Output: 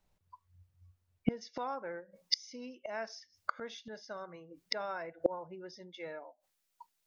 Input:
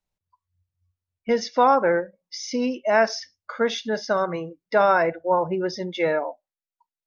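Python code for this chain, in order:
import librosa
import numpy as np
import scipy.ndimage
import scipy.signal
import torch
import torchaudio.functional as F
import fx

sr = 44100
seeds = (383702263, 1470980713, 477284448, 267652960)

y = fx.high_shelf(x, sr, hz=2100.0, db=fx.steps((0.0, -6.0), (1.4, 5.0)))
y = fx.gate_flip(y, sr, shuts_db=-24.0, range_db=-32)
y = F.gain(torch.from_numpy(y), 10.0).numpy()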